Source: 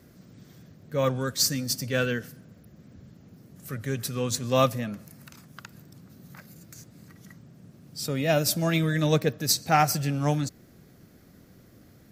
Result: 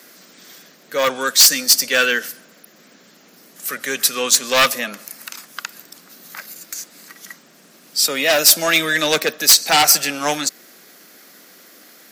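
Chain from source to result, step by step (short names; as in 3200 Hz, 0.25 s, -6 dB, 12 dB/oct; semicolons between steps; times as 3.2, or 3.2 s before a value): Bessel high-pass 340 Hz, order 8; sine folder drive 10 dB, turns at -9 dBFS; tilt shelf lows -7 dB, about 820 Hz; gain -2 dB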